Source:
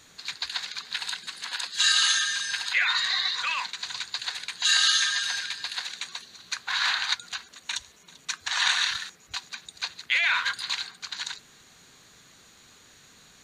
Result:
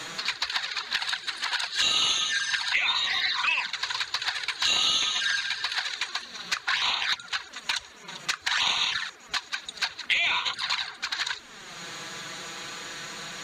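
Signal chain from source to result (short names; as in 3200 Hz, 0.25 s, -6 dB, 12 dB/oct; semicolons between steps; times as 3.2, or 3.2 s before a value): overdrive pedal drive 8 dB, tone 1700 Hz, clips at -8.5 dBFS; envelope flanger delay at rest 6.7 ms, full sweep at -24 dBFS; three-band squash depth 70%; gain +7 dB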